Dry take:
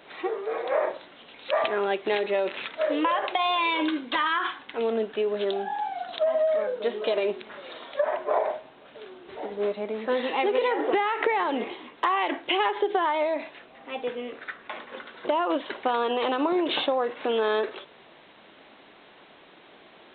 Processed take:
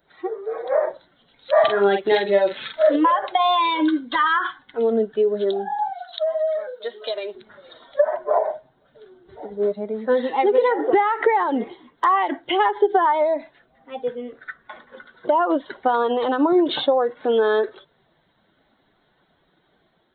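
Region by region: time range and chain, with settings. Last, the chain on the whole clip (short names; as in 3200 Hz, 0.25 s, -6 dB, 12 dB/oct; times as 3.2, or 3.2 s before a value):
1.52–2.96 high shelf 2800 Hz +7 dB + doubler 45 ms -3.5 dB
5.93–7.35 HPF 910 Hz 6 dB/oct + high shelf 3400 Hz +6.5 dB
whole clip: per-bin expansion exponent 1.5; bell 2600 Hz -15 dB 0.44 oct; AGC gain up to 3.5 dB; gain +6 dB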